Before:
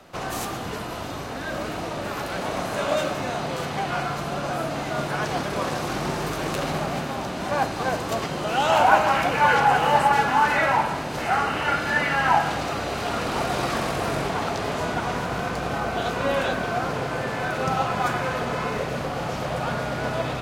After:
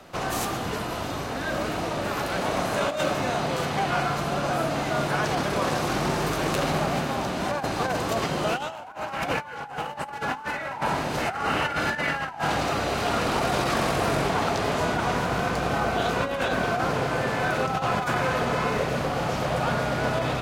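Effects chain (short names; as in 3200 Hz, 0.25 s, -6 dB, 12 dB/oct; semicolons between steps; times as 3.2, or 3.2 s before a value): negative-ratio compressor -25 dBFS, ratio -0.5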